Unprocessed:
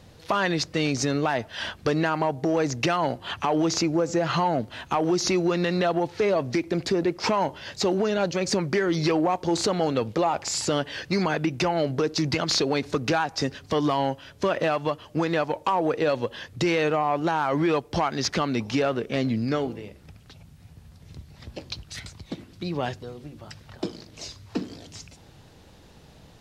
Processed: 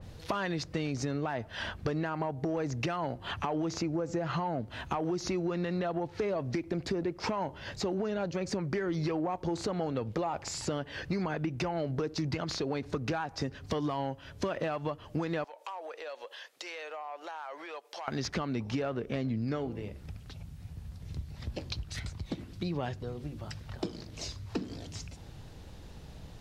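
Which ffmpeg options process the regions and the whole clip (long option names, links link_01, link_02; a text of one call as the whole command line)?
ffmpeg -i in.wav -filter_complex "[0:a]asettb=1/sr,asplit=3[link_01][link_02][link_03];[link_01]atrim=end=15.444[link_04];[link_02]atrim=start=15.44:end=18.08,asetpts=PTS-STARTPTS,afade=type=in:duration=0.004:curve=qsin,afade=type=out:start_time=2.636:duration=0.004:curve=qsin,highpass=frequency=580:width=0.5412,highpass=frequency=580:width=1.3066,equalizer=frequency=1000:width_type=o:width=2:gain=-4.5,acompressor=threshold=-41dB:ratio=2.5:attack=3.2:release=140:knee=1:detection=peak[link_05];[link_03]atrim=start=18.076[link_06];[link_04][link_05]acrossfade=duration=0.004:curve1=hsin:curve2=qsin[link_07];[link_07][link_06]acrossfade=duration=0.004:curve1=qsin:curve2=hsin,lowshelf=frequency=100:gain=11.5,acompressor=threshold=-30dB:ratio=3,adynamicequalizer=threshold=0.00316:dfrequency=2500:dqfactor=0.7:tfrequency=2500:tqfactor=0.7:attack=5:release=100:ratio=0.375:range=3.5:mode=cutabove:tftype=highshelf,volume=-1.5dB" out.wav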